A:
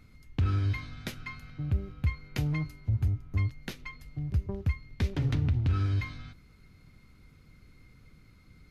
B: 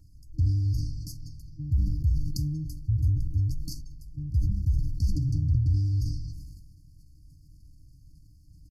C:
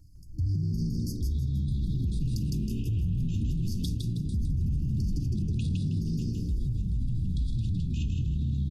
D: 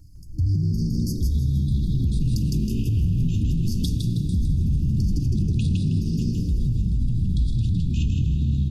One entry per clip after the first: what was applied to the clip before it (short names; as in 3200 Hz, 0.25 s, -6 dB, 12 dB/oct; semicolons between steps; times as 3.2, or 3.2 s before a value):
FFT band-reject 320–4300 Hz; comb 2.2 ms, depth 93%; sustainer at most 36 dB/s; gain -1.5 dB
echoes that change speed 0.692 s, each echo -5 st, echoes 2; on a send: frequency-shifting echo 0.159 s, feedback 36%, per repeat +65 Hz, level -3 dB; on the sum: limiter -22 dBFS, peak gain reduction 11.5 dB
reverb RT60 4.4 s, pre-delay 73 ms, DRR 10.5 dB; gain +6.5 dB